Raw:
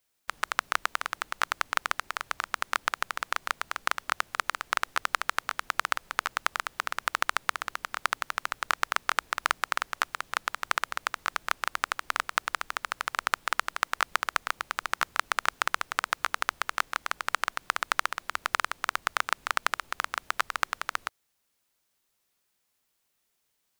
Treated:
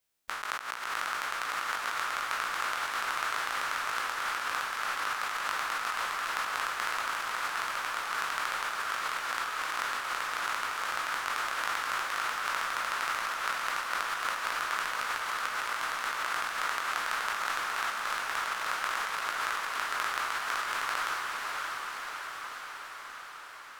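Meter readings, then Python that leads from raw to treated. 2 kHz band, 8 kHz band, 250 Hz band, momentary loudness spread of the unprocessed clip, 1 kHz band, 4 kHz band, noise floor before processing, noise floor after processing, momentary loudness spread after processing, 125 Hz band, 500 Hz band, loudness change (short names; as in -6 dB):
-1.0 dB, -1.0 dB, -1.0 dB, 5 LU, -1.0 dB, -1.0 dB, -76 dBFS, -43 dBFS, 4 LU, n/a, -1.0 dB, -1.5 dB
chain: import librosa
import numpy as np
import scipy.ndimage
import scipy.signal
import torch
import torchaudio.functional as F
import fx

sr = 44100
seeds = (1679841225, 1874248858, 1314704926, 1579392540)

p1 = fx.spec_trails(x, sr, decay_s=0.94)
p2 = fx.over_compress(p1, sr, threshold_db=-27.0, ratio=-0.5)
p3 = p2 + fx.echo_diffused(p2, sr, ms=585, feedback_pct=69, wet_db=-3.0, dry=0)
y = p3 * librosa.db_to_amplitude(-8.0)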